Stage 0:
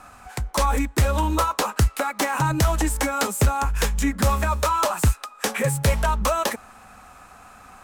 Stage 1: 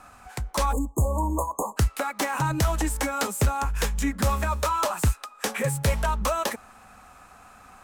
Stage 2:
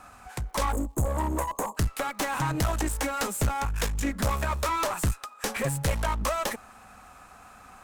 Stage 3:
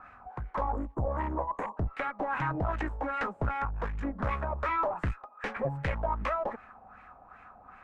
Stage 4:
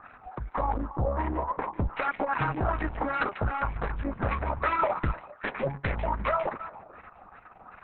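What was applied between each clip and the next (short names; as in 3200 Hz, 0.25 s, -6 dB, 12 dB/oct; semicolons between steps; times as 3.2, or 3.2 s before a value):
spectral delete 0.72–1.77, 1200–6400 Hz; gain -3.5 dB
crackle 200/s -56 dBFS; one-sided clip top -30 dBFS
LFO low-pass sine 2.6 Hz 710–2200 Hz; gain -5.5 dB
delay with a stepping band-pass 0.146 s, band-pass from 2800 Hz, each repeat -1.4 oct, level -8 dB; gain +3.5 dB; Opus 6 kbps 48000 Hz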